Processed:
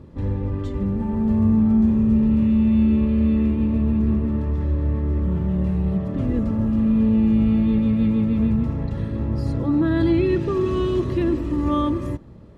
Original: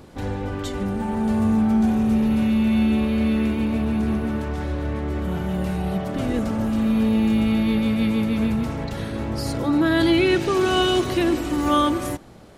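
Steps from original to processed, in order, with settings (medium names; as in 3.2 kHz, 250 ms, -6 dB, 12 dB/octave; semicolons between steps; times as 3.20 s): RIAA curve playback; comb of notches 750 Hz; trim -5.5 dB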